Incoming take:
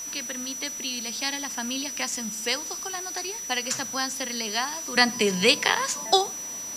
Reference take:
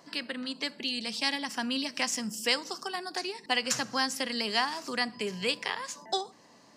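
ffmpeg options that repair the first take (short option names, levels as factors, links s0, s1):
-af "bandreject=f=5900:w=30,afwtdn=0.0063,asetnsamples=n=441:p=0,asendcmd='4.96 volume volume -10.5dB',volume=1"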